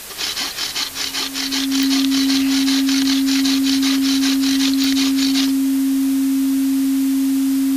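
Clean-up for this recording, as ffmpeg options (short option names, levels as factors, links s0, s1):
-af "adeclick=t=4,bandreject=f=270:w=30,afwtdn=0.025"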